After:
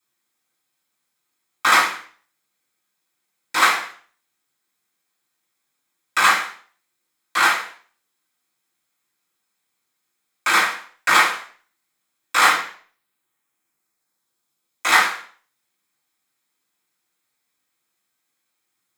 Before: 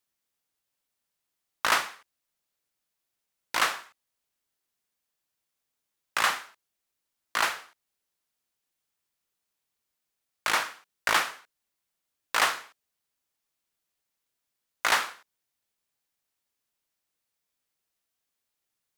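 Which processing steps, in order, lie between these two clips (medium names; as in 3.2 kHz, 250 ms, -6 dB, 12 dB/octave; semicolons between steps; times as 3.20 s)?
12.50–14.89 s: peaking EQ 10 kHz -> 1.4 kHz -7.5 dB 0.73 oct; reverberation RT60 0.45 s, pre-delay 3 ms, DRR -11.5 dB; trim -2.5 dB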